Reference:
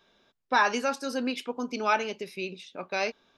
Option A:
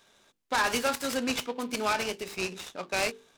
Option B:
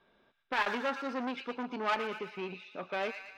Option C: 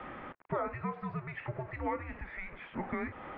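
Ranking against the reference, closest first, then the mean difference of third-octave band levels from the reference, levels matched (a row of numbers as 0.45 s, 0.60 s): B, A, C; 6.5 dB, 10.5 dB, 14.5 dB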